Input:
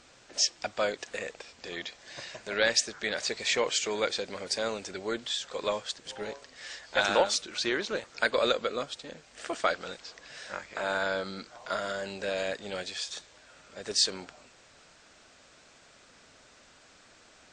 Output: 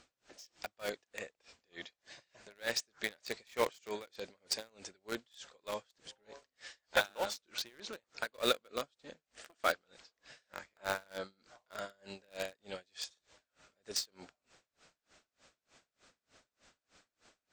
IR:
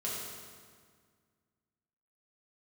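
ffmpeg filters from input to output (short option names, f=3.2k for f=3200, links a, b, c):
-filter_complex "[0:a]asplit=2[a][b];[b]acrusher=bits=3:mix=0:aa=0.000001,volume=-4dB[c];[a][c]amix=inputs=2:normalize=0,aeval=exprs='val(0)*pow(10,-32*(0.5-0.5*cos(2*PI*3.3*n/s))/20)':c=same,volume=-5.5dB"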